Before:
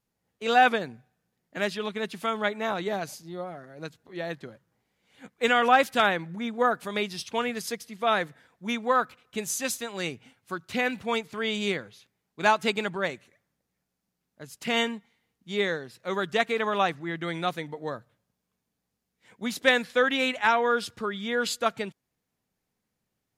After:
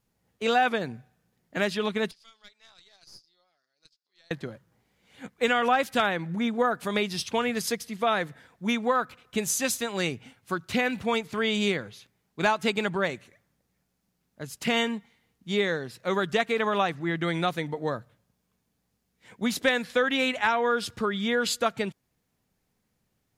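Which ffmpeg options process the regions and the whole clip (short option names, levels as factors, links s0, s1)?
-filter_complex "[0:a]asettb=1/sr,asplit=3[s0][s1][s2];[s0]atrim=end=2.114[s3];[s1]atrim=start=2.11:end=4.31,asetpts=PTS-STARTPTS,afade=t=in:d=0.004:c=qsin,afade=t=out:st=2.196:d=0.004:c=qsin,bandpass=f=4900:t=q:w=7.7,aeval=exprs='(tanh(126*val(0)+0.75)-tanh(0.75))/126':c=same[s4];[s2]atrim=start=4.306[s5];[s3][s4]acrossfade=d=0.004:c1=hsin:c2=qsin[s6];[s6][s5]acrossfade=d=0.004:c1=qsin:c2=hsin,acompressor=threshold=0.0398:ratio=2.5,lowshelf=f=140:g=5.5,volume=1.68"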